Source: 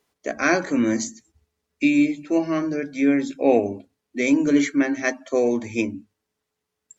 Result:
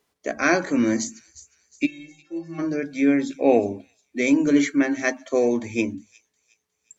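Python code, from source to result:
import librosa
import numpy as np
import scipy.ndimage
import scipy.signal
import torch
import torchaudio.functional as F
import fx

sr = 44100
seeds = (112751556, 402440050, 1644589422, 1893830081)

y = fx.stiff_resonator(x, sr, f0_hz=160.0, decay_s=0.55, stiffness=0.03, at=(1.85, 2.58), fade=0.02)
y = fx.echo_wet_highpass(y, sr, ms=360, feedback_pct=39, hz=5000.0, wet_db=-13.0)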